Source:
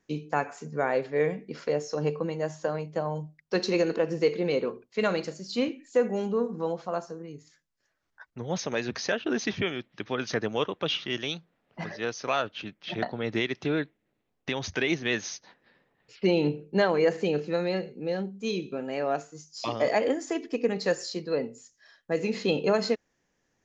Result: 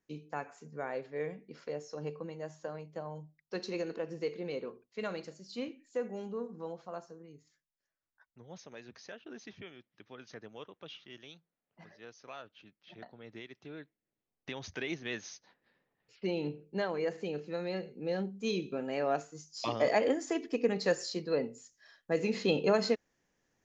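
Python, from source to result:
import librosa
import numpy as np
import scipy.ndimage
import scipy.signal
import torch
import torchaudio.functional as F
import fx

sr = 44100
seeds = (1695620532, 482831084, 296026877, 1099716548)

y = fx.gain(x, sr, db=fx.line((7.34, -11.5), (8.67, -19.5), (13.7, -19.5), (14.5, -10.5), (17.44, -10.5), (18.23, -3.0)))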